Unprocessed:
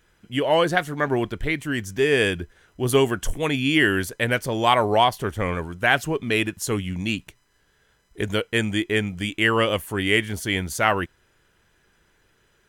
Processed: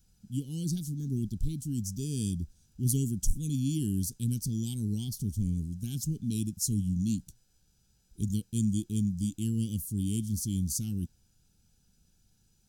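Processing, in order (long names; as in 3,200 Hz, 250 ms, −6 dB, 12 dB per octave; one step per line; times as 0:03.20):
noise in a band 600–1,800 Hz −36 dBFS
elliptic band-stop filter 220–5,300 Hz, stop band 50 dB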